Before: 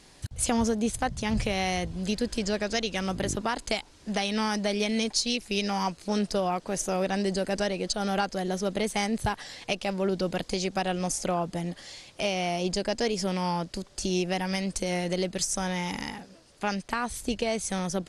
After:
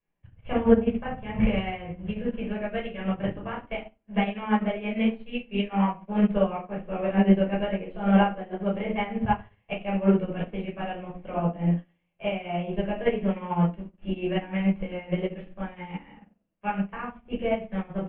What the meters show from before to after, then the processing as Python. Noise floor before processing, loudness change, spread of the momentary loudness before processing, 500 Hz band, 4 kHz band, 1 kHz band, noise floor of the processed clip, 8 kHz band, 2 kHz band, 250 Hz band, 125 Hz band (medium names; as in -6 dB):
-54 dBFS, +1.5 dB, 5 LU, +1.0 dB, -10.0 dB, 0.0 dB, -69 dBFS, under -40 dB, -2.5 dB, +4.0 dB, +4.5 dB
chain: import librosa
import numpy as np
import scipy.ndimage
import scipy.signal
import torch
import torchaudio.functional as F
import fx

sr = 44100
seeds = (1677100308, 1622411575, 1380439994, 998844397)

y = scipy.signal.sosfilt(scipy.signal.butter(12, 3000.0, 'lowpass', fs=sr, output='sos'), x)
y = fx.room_shoebox(y, sr, seeds[0], volume_m3=640.0, walls='furnished', distance_m=5.5)
y = fx.upward_expand(y, sr, threshold_db=-36.0, expansion=2.5)